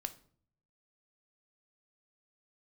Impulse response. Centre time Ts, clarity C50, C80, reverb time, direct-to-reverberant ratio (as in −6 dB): 5 ms, 15.5 dB, 20.5 dB, 0.50 s, 8.0 dB